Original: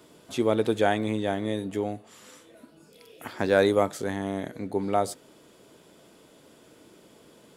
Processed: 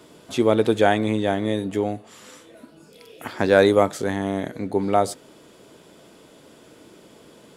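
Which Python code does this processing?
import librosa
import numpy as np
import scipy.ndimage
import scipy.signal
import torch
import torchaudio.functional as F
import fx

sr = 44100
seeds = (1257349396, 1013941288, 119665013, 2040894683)

y = fx.high_shelf(x, sr, hz=12000.0, db=-6.0)
y = y * 10.0 ** (5.5 / 20.0)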